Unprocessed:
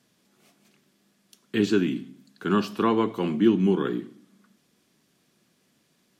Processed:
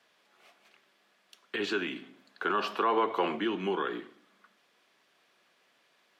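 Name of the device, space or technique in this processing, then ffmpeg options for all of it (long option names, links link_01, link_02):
DJ mixer with the lows and highs turned down: -filter_complex "[0:a]acrossover=split=500 3800:gain=0.0631 1 0.178[link_01][link_02][link_03];[link_01][link_02][link_03]amix=inputs=3:normalize=0,alimiter=level_in=3dB:limit=-24dB:level=0:latency=1:release=95,volume=-3dB,asettb=1/sr,asplit=3[link_04][link_05][link_06];[link_04]atrim=end=2.024[link_07];[link_05]atrim=start=2.02:end=3.39,asetpts=PTS-STARTPTS,afade=type=in:duration=0.004:curve=qsin,afade=type=out:start_time=1.366:duration=0.004:curve=qsin,equalizer=frequency=580:width_type=o:width=2.7:gain=5[link_08];[link_06]atrim=start=3.386[link_09];[link_07][link_08]acrossfade=duration=0.004:curve1=hsin:curve2=qsin[link_10];[link_10][link_09]acrossfade=duration=0.004:curve1=qsin:curve2=hsin,volume=5.5dB"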